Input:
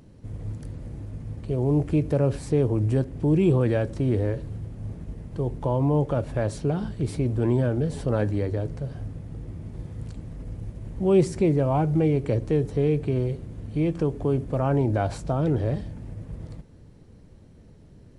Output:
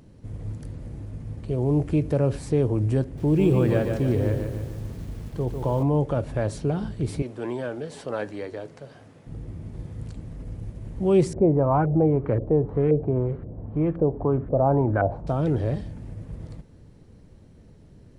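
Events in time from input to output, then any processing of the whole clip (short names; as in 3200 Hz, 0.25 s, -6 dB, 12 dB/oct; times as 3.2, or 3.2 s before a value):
3.03–5.83 lo-fi delay 0.147 s, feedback 55%, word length 8-bit, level -5.5 dB
7.22–9.27 weighting filter A
11.33–15.27 LFO low-pass saw up 1.9 Hz 550–1600 Hz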